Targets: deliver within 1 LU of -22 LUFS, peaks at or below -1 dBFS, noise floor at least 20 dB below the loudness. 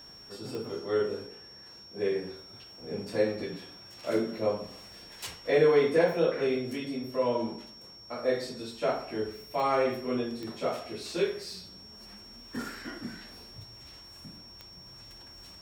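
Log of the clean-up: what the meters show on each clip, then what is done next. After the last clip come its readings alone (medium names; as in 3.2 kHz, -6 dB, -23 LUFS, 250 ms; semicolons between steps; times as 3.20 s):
clicks found 4; steady tone 5.5 kHz; tone level -48 dBFS; loudness -30.5 LUFS; peak level -12.5 dBFS; loudness target -22.0 LUFS
-> de-click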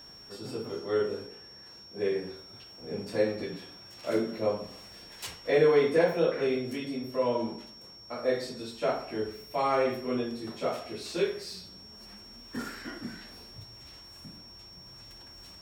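clicks found 0; steady tone 5.5 kHz; tone level -48 dBFS
-> band-stop 5.5 kHz, Q 30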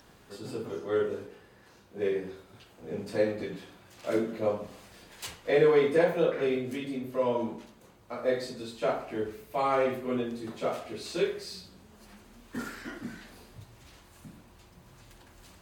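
steady tone not found; loudness -30.5 LUFS; peak level -12.5 dBFS; loudness target -22.0 LUFS
-> trim +8.5 dB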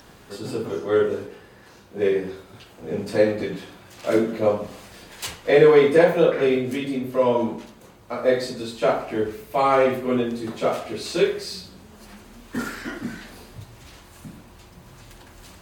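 loudness -22.0 LUFS; peak level -4.0 dBFS; noise floor -49 dBFS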